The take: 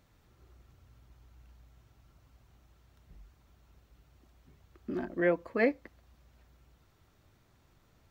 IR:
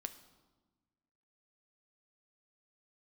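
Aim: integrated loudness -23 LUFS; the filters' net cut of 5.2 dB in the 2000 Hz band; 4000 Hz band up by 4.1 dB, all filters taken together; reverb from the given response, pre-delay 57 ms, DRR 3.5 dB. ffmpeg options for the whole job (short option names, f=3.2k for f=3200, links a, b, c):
-filter_complex "[0:a]equalizer=f=2k:t=o:g=-7.5,equalizer=f=4k:t=o:g=7,asplit=2[a][b];[1:a]atrim=start_sample=2205,adelay=57[c];[b][c]afir=irnorm=-1:irlink=0,volume=-0.5dB[d];[a][d]amix=inputs=2:normalize=0,volume=7.5dB"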